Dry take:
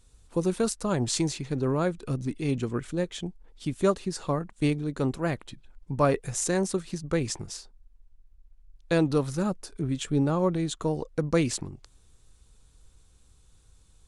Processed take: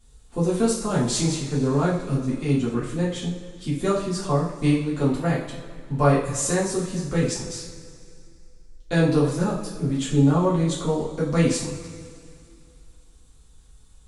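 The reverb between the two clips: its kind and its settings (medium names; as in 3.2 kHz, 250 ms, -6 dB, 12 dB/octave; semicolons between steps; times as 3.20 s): two-slope reverb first 0.47 s, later 2.5 s, from -16 dB, DRR -7.5 dB; trim -4 dB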